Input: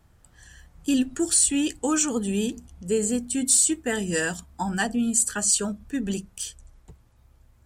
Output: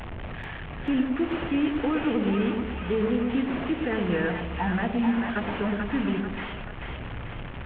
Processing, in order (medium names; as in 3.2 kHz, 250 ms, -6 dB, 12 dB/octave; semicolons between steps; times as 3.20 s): one-bit delta coder 16 kbps, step -31.5 dBFS; peak limiter -19.5 dBFS, peak gain reduction 5.5 dB; two-band feedback delay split 690 Hz, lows 115 ms, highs 439 ms, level -4 dB; trim +1 dB